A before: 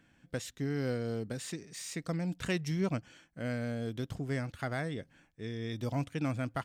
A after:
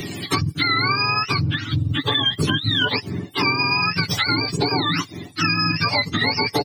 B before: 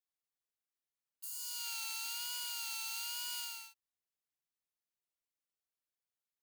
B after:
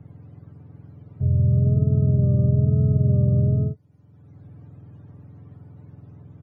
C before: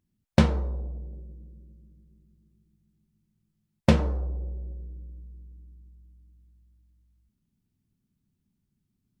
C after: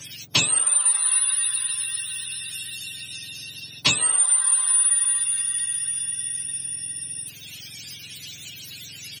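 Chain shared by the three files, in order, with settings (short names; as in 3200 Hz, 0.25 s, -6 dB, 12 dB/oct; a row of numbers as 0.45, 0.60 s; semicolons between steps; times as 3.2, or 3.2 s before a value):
spectrum mirrored in octaves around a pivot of 760 Hz; compressor 4:1, threshold -41 dBFS; comb 6.9 ms, depth 46%; three-band squash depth 70%; match loudness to -20 LUFS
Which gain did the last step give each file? +22.5, +25.0, +24.0 dB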